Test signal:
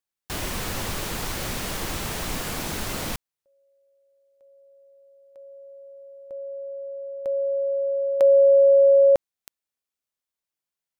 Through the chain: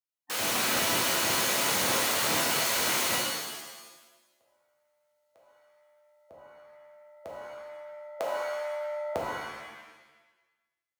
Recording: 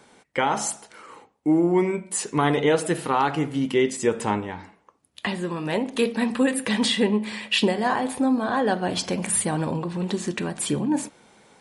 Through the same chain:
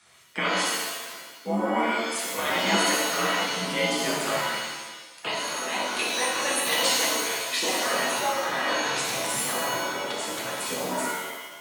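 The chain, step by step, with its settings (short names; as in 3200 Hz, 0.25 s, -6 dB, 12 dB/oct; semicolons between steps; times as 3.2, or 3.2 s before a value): spectral gate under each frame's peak -10 dB weak; frequency shift +43 Hz; shimmer reverb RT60 1.1 s, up +7 st, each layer -2 dB, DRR -3.5 dB; gain -1.5 dB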